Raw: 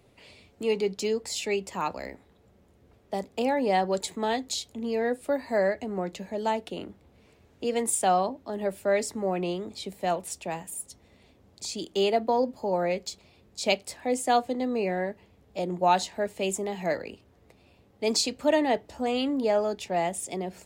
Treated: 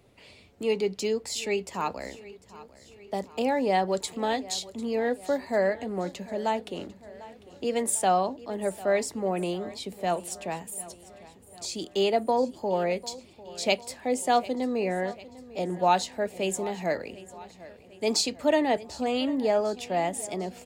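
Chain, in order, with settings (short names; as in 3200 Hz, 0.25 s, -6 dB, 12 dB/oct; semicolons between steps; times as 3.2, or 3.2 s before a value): feedback echo 0.748 s, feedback 55%, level -18.5 dB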